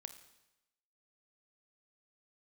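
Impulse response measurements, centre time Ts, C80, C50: 10 ms, 13.0 dB, 11.0 dB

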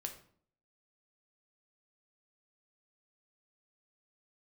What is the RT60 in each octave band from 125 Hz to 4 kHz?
0.65, 0.70, 0.60, 0.50, 0.45, 0.40 seconds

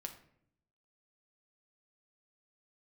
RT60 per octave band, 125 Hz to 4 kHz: 1.0, 0.95, 0.75, 0.60, 0.60, 0.40 seconds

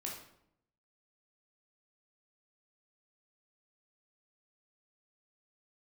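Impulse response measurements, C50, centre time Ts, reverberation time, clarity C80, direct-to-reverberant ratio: 4.0 dB, 38 ms, 0.75 s, 8.0 dB, −2.5 dB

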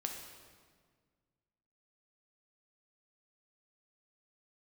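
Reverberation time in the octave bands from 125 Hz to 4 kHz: 2.4, 2.2, 1.8, 1.6, 1.5, 1.3 seconds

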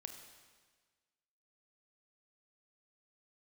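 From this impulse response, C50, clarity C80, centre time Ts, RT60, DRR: 6.5 dB, 8.0 dB, 32 ms, 1.5 s, 5.0 dB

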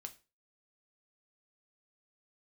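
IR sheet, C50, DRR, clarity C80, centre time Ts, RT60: 17.0 dB, 6.0 dB, 23.0 dB, 5 ms, 0.30 s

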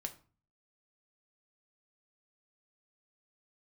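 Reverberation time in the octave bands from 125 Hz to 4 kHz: 0.65, 0.55, 0.40, 0.40, 0.35, 0.30 seconds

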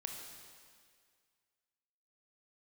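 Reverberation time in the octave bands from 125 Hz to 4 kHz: 1.8, 1.9, 2.0, 2.0, 2.0, 1.9 seconds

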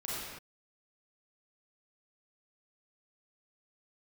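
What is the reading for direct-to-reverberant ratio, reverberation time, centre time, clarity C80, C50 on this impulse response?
−8.5 dB, non-exponential decay, 114 ms, −1.5 dB, −5.0 dB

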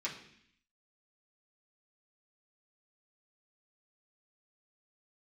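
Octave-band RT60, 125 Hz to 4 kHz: 0.85, 0.85, 0.65, 0.65, 0.85, 0.85 seconds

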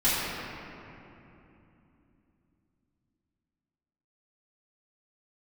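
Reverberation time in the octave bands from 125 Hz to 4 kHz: 4.4, 4.5, 3.1, 2.8, 2.6, 1.7 seconds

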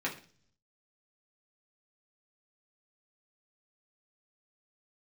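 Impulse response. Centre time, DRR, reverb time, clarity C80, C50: 17 ms, −4.5 dB, 0.45 s, 16.0 dB, 11.0 dB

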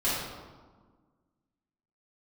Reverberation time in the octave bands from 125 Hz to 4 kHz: 1.8, 2.0, 1.5, 1.5, 1.0, 0.85 seconds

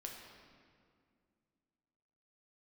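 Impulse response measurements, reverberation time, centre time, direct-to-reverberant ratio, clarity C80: 2.2 s, 71 ms, 0.0 dB, 4.0 dB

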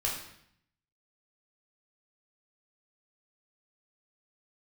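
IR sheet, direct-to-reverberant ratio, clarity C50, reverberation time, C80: −3.5 dB, 4.5 dB, 0.70 s, 7.5 dB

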